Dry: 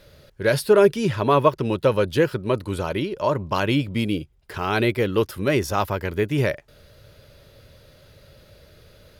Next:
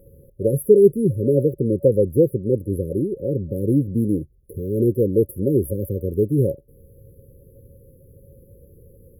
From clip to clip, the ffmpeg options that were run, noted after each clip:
-af "afftfilt=real='re*(1-between(b*sr/4096,560,10000))':imag='im*(1-between(b*sr/4096,560,10000))':win_size=4096:overlap=0.75,volume=3.5dB"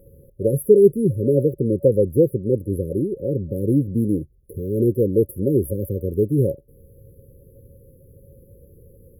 -af anull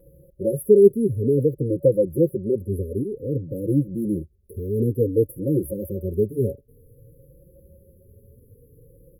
-filter_complex "[0:a]asplit=2[a][b];[b]adelay=3.7,afreqshift=0.55[c];[a][c]amix=inputs=2:normalize=1"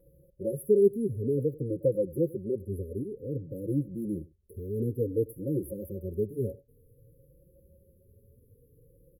-af "aecho=1:1:96:0.0794,volume=-8.5dB"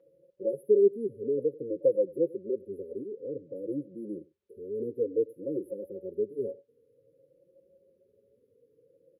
-af "highpass=460,lowpass=3.8k,volume=4.5dB"

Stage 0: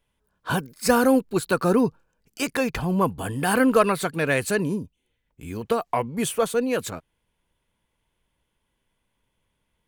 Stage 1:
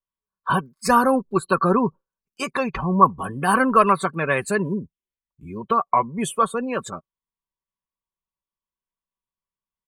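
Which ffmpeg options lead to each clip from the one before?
-af "afftdn=nr=25:nf=-35,equalizer=f=1.1k:t=o:w=0.37:g=14,aecho=1:1:5.2:0.43,volume=-1dB"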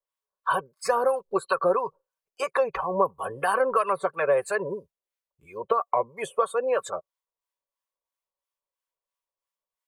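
-filter_complex "[0:a]lowshelf=f=360:t=q:w=3:g=-12.5,acrossover=split=430|1900|7900[a][b][c][d];[a]acompressor=threshold=-29dB:ratio=4[e];[b]acompressor=threshold=-24dB:ratio=4[f];[c]acompressor=threshold=-43dB:ratio=4[g];[d]acompressor=threshold=-50dB:ratio=4[h];[e][f][g][h]amix=inputs=4:normalize=0,acrossover=split=890[i][j];[i]aeval=exprs='val(0)*(1-0.7/2+0.7/2*cos(2*PI*3*n/s))':c=same[k];[j]aeval=exprs='val(0)*(1-0.7/2-0.7/2*cos(2*PI*3*n/s))':c=same[l];[k][l]amix=inputs=2:normalize=0,volume=3.5dB"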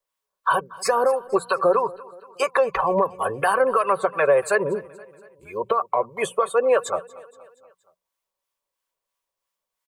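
-af "alimiter=limit=-17dB:level=0:latency=1:release=233,bandreject=f=60:t=h:w=6,bandreject=f=120:t=h:w=6,bandreject=f=180:t=h:w=6,aecho=1:1:236|472|708|944:0.0891|0.049|0.027|0.0148,volume=7.5dB"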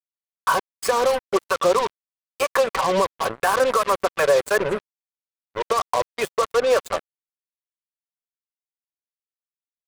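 -af "acrusher=bits=3:mix=0:aa=0.5"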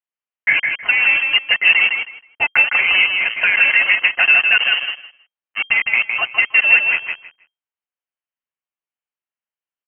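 -filter_complex "[0:a]lowpass=f=2.7k:t=q:w=0.5098,lowpass=f=2.7k:t=q:w=0.6013,lowpass=f=2.7k:t=q:w=0.9,lowpass=f=2.7k:t=q:w=2.563,afreqshift=-3200,asplit=2[a][b];[b]aecho=0:1:159|318|477:0.562|0.101|0.0182[c];[a][c]amix=inputs=2:normalize=0,volume=4.5dB"

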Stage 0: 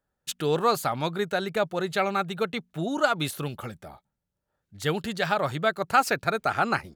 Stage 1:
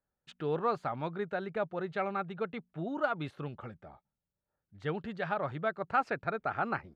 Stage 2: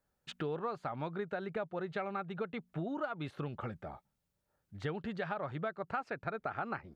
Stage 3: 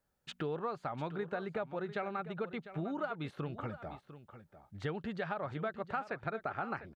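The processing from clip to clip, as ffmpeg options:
-af "lowpass=2k,volume=-7.5dB"
-af "acompressor=threshold=-42dB:ratio=5,volume=6.5dB"
-af "aecho=1:1:700:0.211"

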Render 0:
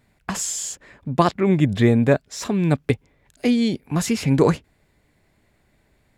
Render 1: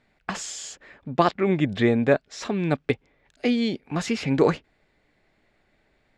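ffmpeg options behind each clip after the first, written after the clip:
-af "lowpass=4.5k,equalizer=f=88:w=0.48:g=-10,bandreject=f=1k:w=13"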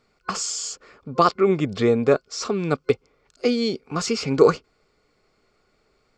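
-af "superequalizer=7b=2.24:10b=2.51:11b=0.562:14b=3.16:15b=2.51,volume=-1dB"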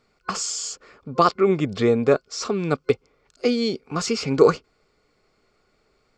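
-af anull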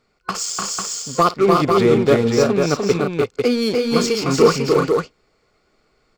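-filter_complex "[0:a]asplit=2[a][b];[b]acrusher=bits=3:mix=0:aa=0.5,volume=-6dB[c];[a][c]amix=inputs=2:normalize=0,asoftclip=type=tanh:threshold=-5dB,aecho=1:1:53|298|333|497:0.119|0.708|0.473|0.596"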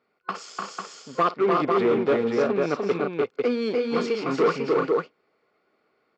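-af "asoftclip=type=hard:threshold=-11dB,highpass=240,lowpass=2.7k,volume=-4.5dB"

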